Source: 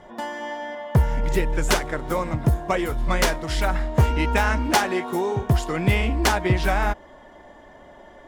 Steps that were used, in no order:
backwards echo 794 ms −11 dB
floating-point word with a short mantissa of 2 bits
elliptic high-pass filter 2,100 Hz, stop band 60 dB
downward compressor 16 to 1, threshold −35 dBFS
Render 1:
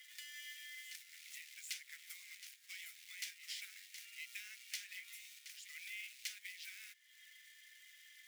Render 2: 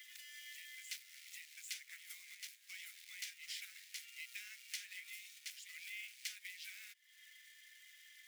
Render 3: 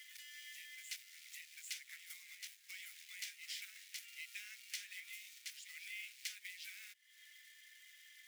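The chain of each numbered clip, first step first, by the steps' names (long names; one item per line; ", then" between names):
downward compressor, then backwards echo, then floating-point word with a short mantissa, then elliptic high-pass filter
backwards echo, then floating-point word with a short mantissa, then downward compressor, then elliptic high-pass filter
floating-point word with a short mantissa, then backwards echo, then downward compressor, then elliptic high-pass filter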